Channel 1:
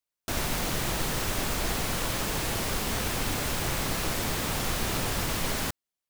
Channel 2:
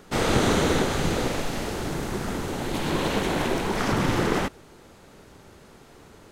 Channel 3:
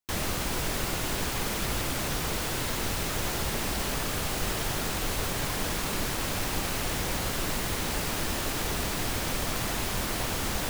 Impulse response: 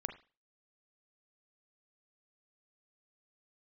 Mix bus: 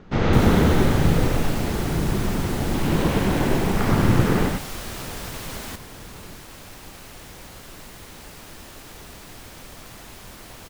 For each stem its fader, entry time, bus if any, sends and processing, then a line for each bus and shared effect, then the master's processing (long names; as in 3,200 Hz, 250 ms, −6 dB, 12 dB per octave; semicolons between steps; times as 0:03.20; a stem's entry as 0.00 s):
−5.0 dB, 0.05 s, no send, no echo send, no processing
−1.0 dB, 0.00 s, no send, echo send −3.5 dB, Butterworth low-pass 6,600 Hz; bass and treble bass +9 dB, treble −11 dB
−11.5 dB, 0.30 s, no send, no echo send, no processing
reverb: not used
echo: single-tap delay 104 ms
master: no processing